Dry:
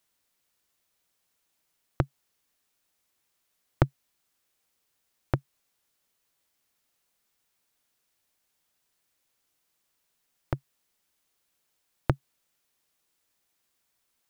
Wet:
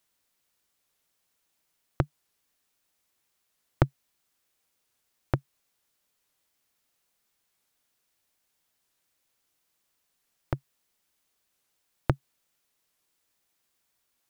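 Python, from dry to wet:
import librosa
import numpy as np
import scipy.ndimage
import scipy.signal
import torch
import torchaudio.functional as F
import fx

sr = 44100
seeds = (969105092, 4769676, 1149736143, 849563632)

y = fx.record_warp(x, sr, rpm=45.0, depth_cents=160.0)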